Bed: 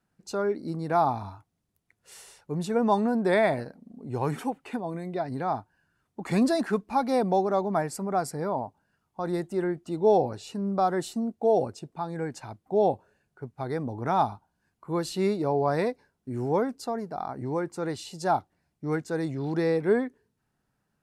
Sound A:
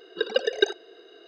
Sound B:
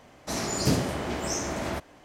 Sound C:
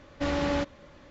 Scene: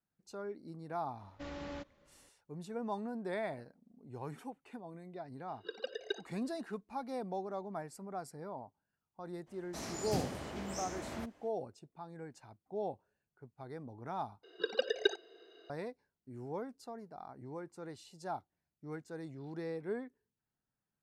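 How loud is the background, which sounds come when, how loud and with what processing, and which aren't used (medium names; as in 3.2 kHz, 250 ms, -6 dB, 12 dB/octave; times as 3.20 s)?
bed -15.5 dB
1.19 s: add C -16.5 dB
5.48 s: add A -17 dB
9.46 s: add B -12.5 dB, fades 0.02 s
14.43 s: replace with A -9 dB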